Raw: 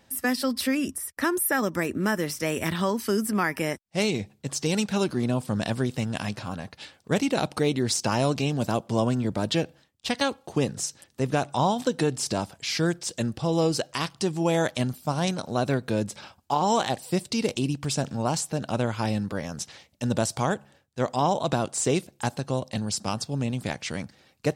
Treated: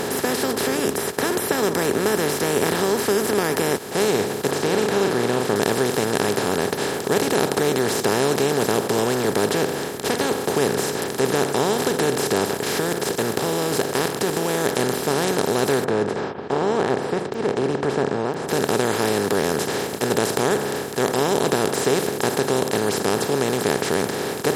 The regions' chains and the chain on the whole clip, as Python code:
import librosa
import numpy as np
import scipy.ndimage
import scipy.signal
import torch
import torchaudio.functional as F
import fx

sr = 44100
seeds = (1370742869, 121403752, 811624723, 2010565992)

y = fx.chain(x, sr, fx.lowpass(hz=2500.0, slope=12),
    fx.doubler(ms=41.0, db=-10.5), at=(4.51, 5.56))
y = fx.chain(y, sr, fx.block_float(bits=7),
    fx.high_shelf(hz=9300.0, db=4.0),
    fx.level_steps(step_db=10), at=(12.51, 14.69))
y = fx.chain(y, sr, fx.lowpass(hz=1200.0, slope=24),
    fx.tremolo_abs(hz=1.0), at=(15.84, 18.49))
y = fx.bin_compress(y, sr, power=0.2)
y = fx.peak_eq(y, sr, hz=410.0, db=11.0, octaves=0.36)
y = y * 10.0 ** (-7.5 / 20.0)